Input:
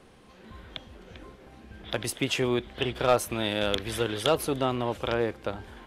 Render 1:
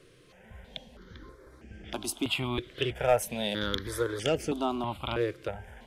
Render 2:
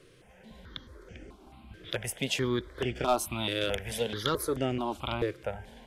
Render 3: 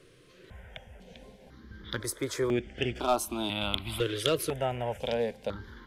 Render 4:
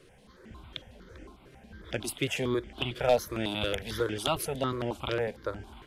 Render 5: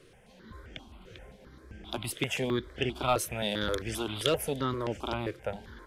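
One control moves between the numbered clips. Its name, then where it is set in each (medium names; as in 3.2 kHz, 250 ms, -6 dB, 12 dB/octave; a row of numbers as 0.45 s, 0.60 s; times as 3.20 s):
stepped phaser, rate: 3.1 Hz, 4.6 Hz, 2 Hz, 11 Hz, 7.6 Hz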